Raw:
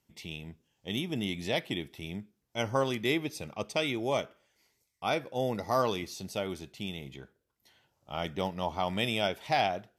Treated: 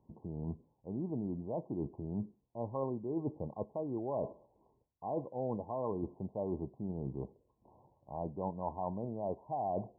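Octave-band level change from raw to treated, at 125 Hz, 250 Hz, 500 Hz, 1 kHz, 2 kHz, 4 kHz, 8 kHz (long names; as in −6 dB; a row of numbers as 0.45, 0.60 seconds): −2.5 dB, −3.0 dB, −5.5 dB, −7.5 dB, below −40 dB, below −40 dB, below −35 dB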